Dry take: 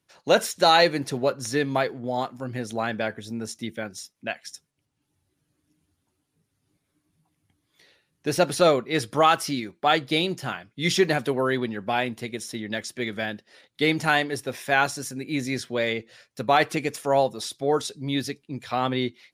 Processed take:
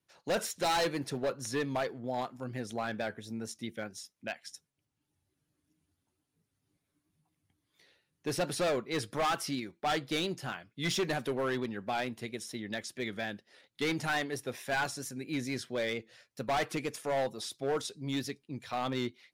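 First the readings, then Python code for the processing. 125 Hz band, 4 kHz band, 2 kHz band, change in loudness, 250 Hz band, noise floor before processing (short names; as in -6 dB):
-8.5 dB, -9.5 dB, -9.5 dB, -9.5 dB, -8.5 dB, -77 dBFS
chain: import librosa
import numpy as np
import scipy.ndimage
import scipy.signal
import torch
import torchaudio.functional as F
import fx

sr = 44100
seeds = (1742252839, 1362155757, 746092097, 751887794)

y = np.clip(x, -10.0 ** (-19.5 / 20.0), 10.0 ** (-19.5 / 20.0))
y = fx.vibrato(y, sr, rate_hz=4.4, depth_cents=42.0)
y = y * librosa.db_to_amplitude(-7.0)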